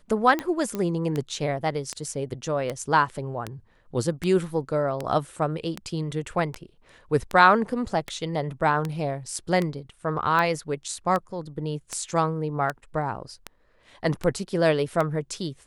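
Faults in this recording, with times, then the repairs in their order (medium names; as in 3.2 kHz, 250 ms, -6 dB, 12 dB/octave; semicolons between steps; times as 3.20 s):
tick 78 rpm -14 dBFS
0.75 s: pop -16 dBFS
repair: de-click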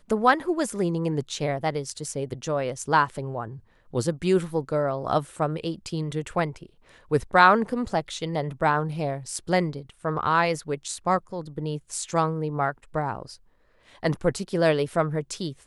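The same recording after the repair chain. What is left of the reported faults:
nothing left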